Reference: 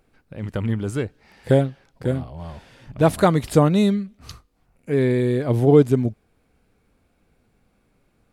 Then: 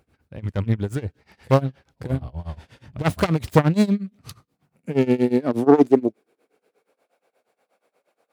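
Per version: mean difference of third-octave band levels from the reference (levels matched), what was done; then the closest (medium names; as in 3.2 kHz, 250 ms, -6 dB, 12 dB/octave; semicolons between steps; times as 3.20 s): 4.0 dB: self-modulated delay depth 0.51 ms; high-pass sweep 73 Hz -> 570 Hz, 3.30–7.12 s; tremolo 8.4 Hz, depth 92%; trim +1.5 dB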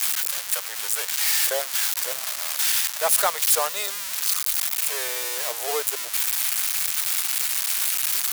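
22.0 dB: zero-crossing glitches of -10 dBFS; Bessel high-pass 930 Hz, order 8; waveshaping leveller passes 1; trim -3 dB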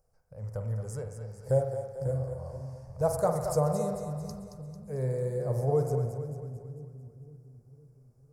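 8.5 dB: FFT filter 130 Hz 0 dB, 310 Hz -22 dB, 510 Hz +2 dB, 1.1 kHz -5 dB, 3.5 kHz -27 dB, 5.1 kHz +3 dB; on a send: two-band feedback delay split 320 Hz, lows 511 ms, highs 223 ms, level -8 dB; on the sum: spring tank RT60 1.1 s, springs 46 ms, chirp 45 ms, DRR 5.5 dB; trim -8.5 dB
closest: first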